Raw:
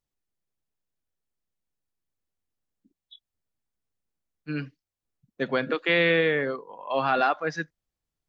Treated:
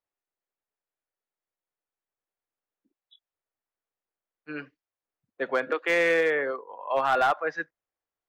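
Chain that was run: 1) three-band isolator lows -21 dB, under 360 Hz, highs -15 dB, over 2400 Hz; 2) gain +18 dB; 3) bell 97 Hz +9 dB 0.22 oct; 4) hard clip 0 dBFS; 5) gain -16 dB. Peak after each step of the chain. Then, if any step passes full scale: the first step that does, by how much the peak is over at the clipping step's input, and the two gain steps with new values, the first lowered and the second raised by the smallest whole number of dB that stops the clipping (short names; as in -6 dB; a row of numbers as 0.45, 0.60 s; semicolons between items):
-12.5, +5.5, +5.5, 0.0, -16.0 dBFS; step 2, 5.5 dB; step 2 +12 dB, step 5 -10 dB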